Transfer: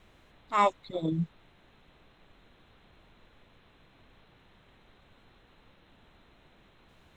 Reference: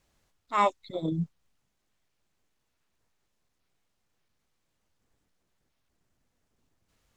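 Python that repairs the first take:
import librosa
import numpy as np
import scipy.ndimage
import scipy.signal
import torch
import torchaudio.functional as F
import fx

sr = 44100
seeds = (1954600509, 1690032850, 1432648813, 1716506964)

y = fx.noise_reduce(x, sr, print_start_s=1.49, print_end_s=1.99, reduce_db=16.0)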